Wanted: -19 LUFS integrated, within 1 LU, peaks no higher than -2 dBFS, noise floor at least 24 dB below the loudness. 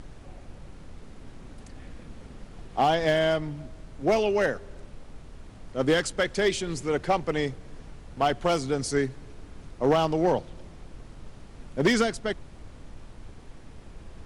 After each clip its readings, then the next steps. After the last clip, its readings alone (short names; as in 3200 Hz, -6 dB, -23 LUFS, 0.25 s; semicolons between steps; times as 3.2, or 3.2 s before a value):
clipped 0.4%; flat tops at -15.0 dBFS; noise floor -47 dBFS; noise floor target -51 dBFS; loudness -26.5 LUFS; peak -15.0 dBFS; loudness target -19.0 LUFS
-> clip repair -15 dBFS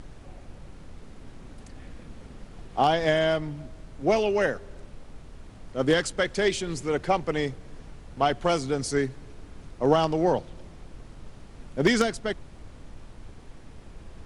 clipped 0.0%; noise floor -47 dBFS; noise floor target -50 dBFS
-> noise print and reduce 6 dB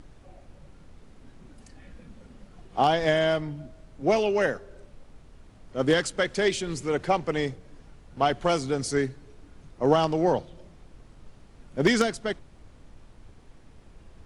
noise floor -53 dBFS; loudness -26.0 LUFS; peak -6.0 dBFS; loudness target -19.0 LUFS
-> gain +7 dB; limiter -2 dBFS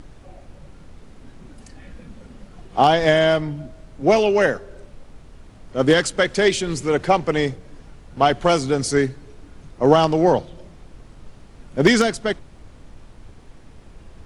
loudness -19.0 LUFS; peak -2.0 dBFS; noise floor -46 dBFS